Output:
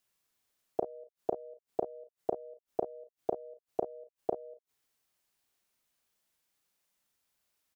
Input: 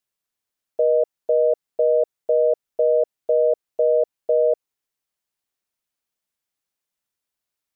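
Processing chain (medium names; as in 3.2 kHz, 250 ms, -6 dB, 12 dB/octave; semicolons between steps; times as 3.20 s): inverted gate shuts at -22 dBFS, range -36 dB; early reflections 35 ms -6 dB, 50 ms -13 dB; trim +3.5 dB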